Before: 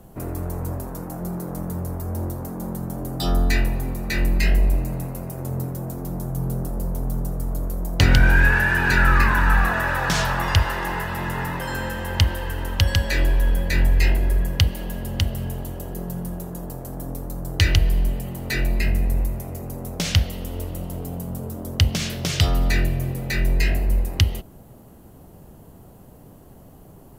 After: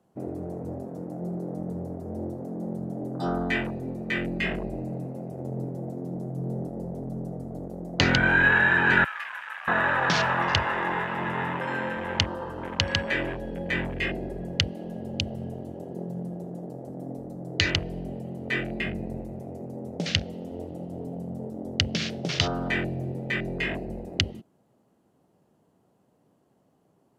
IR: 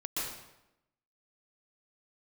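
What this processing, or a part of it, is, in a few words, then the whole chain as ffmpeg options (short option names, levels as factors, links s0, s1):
over-cleaned archive recording: -filter_complex "[0:a]asettb=1/sr,asplit=3[s0][s1][s2];[s0]atrim=end=9.044[s3];[s1]atrim=start=9.04:end=9.68,asetpts=PTS-STARTPTS,afade=t=in:d=0.004:c=qsin,afade=t=out:st=0.636:d=0.004:c=qsin,aderivative[s4];[s2]atrim=start=9.676[s5];[s3][s4]acrossfade=d=0.004:c1=hsin:c2=qsin[s6];[s6][s5]acrossfade=d=0.004:c1=qsin:c2=hsin,highpass=180,lowpass=7400,afwtdn=0.0282"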